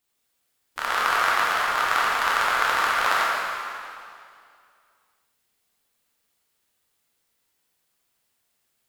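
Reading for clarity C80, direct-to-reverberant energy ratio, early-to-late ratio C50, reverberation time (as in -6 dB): -1.0 dB, -6.0 dB, -2.5 dB, 2.3 s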